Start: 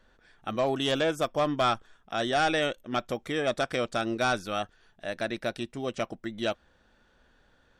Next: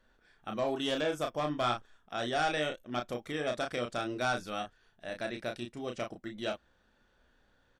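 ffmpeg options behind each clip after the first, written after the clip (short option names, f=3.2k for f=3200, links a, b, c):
-filter_complex "[0:a]asplit=2[a][b];[b]adelay=33,volume=-5dB[c];[a][c]amix=inputs=2:normalize=0,volume=-6.5dB"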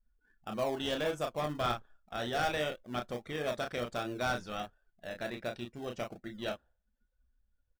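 -filter_complex "[0:a]afftdn=nr=26:nf=-57,equalizer=f=300:t=o:w=0.4:g=-5,asplit=2[a][b];[b]acrusher=samples=30:mix=1:aa=0.000001:lfo=1:lforange=18:lforate=1.4,volume=-10dB[c];[a][c]amix=inputs=2:normalize=0,volume=-2dB"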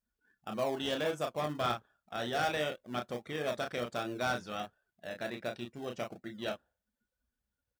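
-af "highpass=100"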